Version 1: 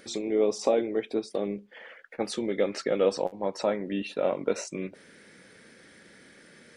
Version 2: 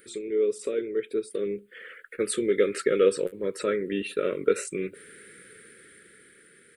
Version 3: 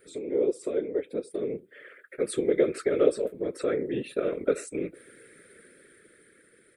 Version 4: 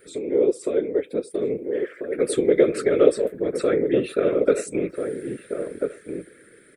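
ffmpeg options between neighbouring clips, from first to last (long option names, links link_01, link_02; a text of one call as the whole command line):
ffmpeg -i in.wav -af "firequalizer=gain_entry='entry(130,0);entry(250,-5);entry(420,8);entry(780,-30);entry(1300,4);entry(3600,0);entry(5800,-10);entry(8400,12)':delay=0.05:min_phase=1,dynaudnorm=framelen=270:gausssize=11:maxgain=9dB,volume=-6dB" out.wav
ffmpeg -i in.wav -af "afftfilt=real='hypot(re,im)*cos(2*PI*random(0))':imag='hypot(re,im)*sin(2*PI*random(1))':win_size=512:overlap=0.75,equalizer=frequency=390:width=0.61:gain=5.5,bandreject=frequency=2900:width=12" out.wav
ffmpeg -i in.wav -filter_complex "[0:a]asplit=2[link_01][link_02];[link_02]adelay=1341,volume=-6dB,highshelf=frequency=4000:gain=-30.2[link_03];[link_01][link_03]amix=inputs=2:normalize=0,volume=6dB" out.wav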